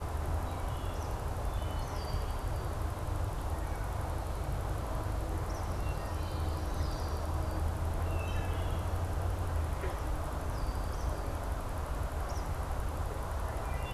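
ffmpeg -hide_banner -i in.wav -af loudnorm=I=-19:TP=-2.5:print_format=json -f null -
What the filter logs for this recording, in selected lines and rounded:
"input_i" : "-36.9",
"input_tp" : "-21.0",
"input_lra" : "1.9",
"input_thresh" : "-46.9",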